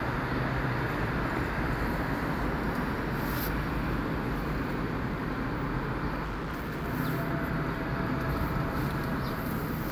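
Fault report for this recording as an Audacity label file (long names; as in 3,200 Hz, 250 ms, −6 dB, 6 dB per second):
6.230000	6.860000	clipping −31 dBFS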